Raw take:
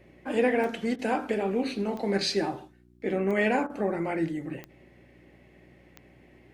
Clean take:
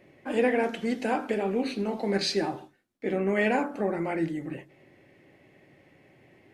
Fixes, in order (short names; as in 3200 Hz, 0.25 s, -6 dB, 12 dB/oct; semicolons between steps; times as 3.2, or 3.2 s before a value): de-click; de-hum 60.3 Hz, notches 6; interpolate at 0.96/3.67, 27 ms